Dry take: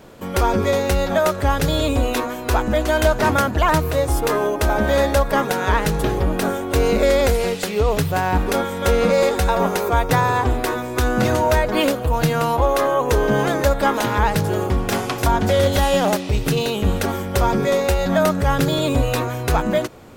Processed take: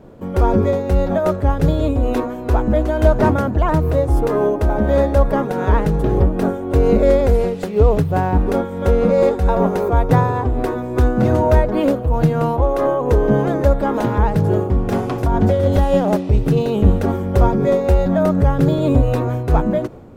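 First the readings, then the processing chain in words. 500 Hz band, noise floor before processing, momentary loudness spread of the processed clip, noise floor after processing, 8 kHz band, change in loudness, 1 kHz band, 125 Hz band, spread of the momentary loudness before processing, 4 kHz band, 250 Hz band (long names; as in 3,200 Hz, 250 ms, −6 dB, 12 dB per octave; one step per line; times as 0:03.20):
+2.0 dB, −28 dBFS, 4 LU, −26 dBFS, below −10 dB, +2.0 dB, −2.0 dB, +5.0 dB, 4 LU, −11.5 dB, +4.0 dB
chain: tilt shelving filter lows +9.5 dB, about 1,200 Hz
amplitude modulation by smooth noise, depth 60%
level −1.5 dB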